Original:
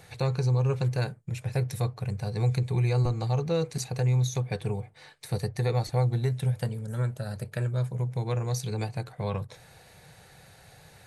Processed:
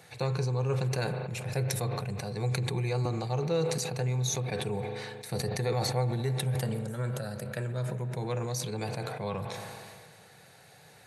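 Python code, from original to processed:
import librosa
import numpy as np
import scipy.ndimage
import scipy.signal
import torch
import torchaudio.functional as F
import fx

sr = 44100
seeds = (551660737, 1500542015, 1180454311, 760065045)

y = scipy.signal.sosfilt(scipy.signal.butter(2, 150.0, 'highpass', fs=sr, output='sos'), x)
y = fx.rev_spring(y, sr, rt60_s=3.2, pass_ms=(38,), chirp_ms=35, drr_db=12.5)
y = fx.sustainer(y, sr, db_per_s=27.0)
y = F.gain(torch.from_numpy(y), -1.5).numpy()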